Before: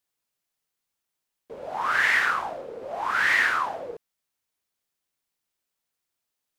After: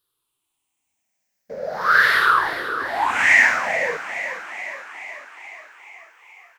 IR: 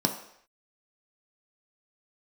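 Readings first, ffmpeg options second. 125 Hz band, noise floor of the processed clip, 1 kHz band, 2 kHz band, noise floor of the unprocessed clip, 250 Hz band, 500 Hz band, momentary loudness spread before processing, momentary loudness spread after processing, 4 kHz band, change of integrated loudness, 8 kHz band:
no reading, -78 dBFS, +7.0 dB, +7.0 dB, -83 dBFS, +6.5 dB, +7.0 dB, 17 LU, 20 LU, +5.5 dB, +5.0 dB, +7.5 dB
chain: -filter_complex "[0:a]afftfilt=real='re*pow(10,14/40*sin(2*PI*(0.62*log(max(b,1)*sr/1024/100)/log(2)-(-0.44)*(pts-256)/sr)))':imag='im*pow(10,14/40*sin(2*PI*(0.62*log(max(b,1)*sr/1024/100)/log(2)-(-0.44)*(pts-256)/sr)))':win_size=1024:overlap=0.75,asplit=9[s0][s1][s2][s3][s4][s5][s6][s7][s8];[s1]adelay=426,afreqshift=37,volume=0.282[s9];[s2]adelay=852,afreqshift=74,volume=0.18[s10];[s3]adelay=1278,afreqshift=111,volume=0.115[s11];[s4]adelay=1704,afreqshift=148,volume=0.0741[s12];[s5]adelay=2130,afreqshift=185,volume=0.0473[s13];[s6]adelay=2556,afreqshift=222,volume=0.0302[s14];[s7]adelay=2982,afreqshift=259,volume=0.0193[s15];[s8]adelay=3408,afreqshift=296,volume=0.0124[s16];[s0][s9][s10][s11][s12][s13][s14][s15][s16]amix=inputs=9:normalize=0,volume=1.58"

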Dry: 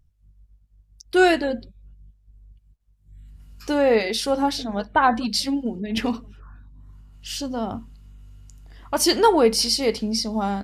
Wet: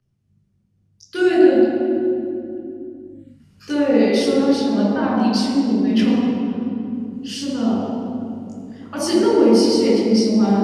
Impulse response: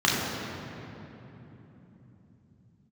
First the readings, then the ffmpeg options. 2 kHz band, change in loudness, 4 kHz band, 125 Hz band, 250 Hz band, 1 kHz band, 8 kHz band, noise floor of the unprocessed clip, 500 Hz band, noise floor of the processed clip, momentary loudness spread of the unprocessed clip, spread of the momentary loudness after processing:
-3.0 dB, +3.5 dB, -2.0 dB, +9.0 dB, +9.5 dB, -4.0 dB, -4.0 dB, -60 dBFS, +5.0 dB, -63 dBFS, 14 LU, 17 LU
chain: -filter_complex "[0:a]acrossover=split=420[s0][s1];[s1]acompressor=threshold=0.0631:ratio=6[s2];[s0][s2]amix=inputs=2:normalize=0[s3];[1:a]atrim=start_sample=2205,asetrate=66150,aresample=44100[s4];[s3][s4]afir=irnorm=-1:irlink=0,volume=0.282"

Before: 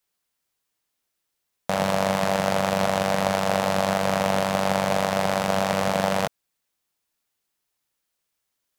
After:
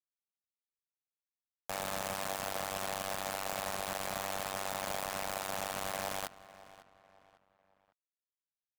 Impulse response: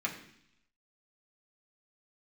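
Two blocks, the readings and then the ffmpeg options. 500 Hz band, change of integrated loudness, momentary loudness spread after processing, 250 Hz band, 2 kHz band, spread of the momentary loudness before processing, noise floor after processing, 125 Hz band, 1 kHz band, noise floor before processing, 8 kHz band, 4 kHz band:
-17.0 dB, -13.5 dB, 5 LU, -21.5 dB, -12.0 dB, 2 LU, under -85 dBFS, -20.5 dB, -14.0 dB, -79 dBFS, -6.0 dB, -10.5 dB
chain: -filter_complex "[0:a]highpass=f=77:w=0.5412,highpass=f=77:w=1.3066,equalizer=f=280:w=1:g=-9.5,bandreject=f=60:t=h:w=6,bandreject=f=120:t=h:w=6,bandreject=f=180:t=h:w=6,bandreject=f=240:t=h:w=6,bandreject=f=300:t=h:w=6,bandreject=f=360:t=h:w=6,bandreject=f=420:t=h:w=6,bandreject=f=480:t=h:w=6,bandreject=f=540:t=h:w=6,bandreject=f=600:t=h:w=6,acrossover=split=6900[s0][s1];[s0]alimiter=limit=0.126:level=0:latency=1:release=46[s2];[s2][s1]amix=inputs=2:normalize=0,acrusher=bits=4:mix=0:aa=0.000001,asplit=2[s3][s4];[s4]adelay=551,lowpass=f=3500:p=1,volume=0.141,asplit=2[s5][s6];[s6]adelay=551,lowpass=f=3500:p=1,volume=0.39,asplit=2[s7][s8];[s8]adelay=551,lowpass=f=3500:p=1,volume=0.39[s9];[s5][s7][s9]amix=inputs=3:normalize=0[s10];[s3][s10]amix=inputs=2:normalize=0,volume=0.501"

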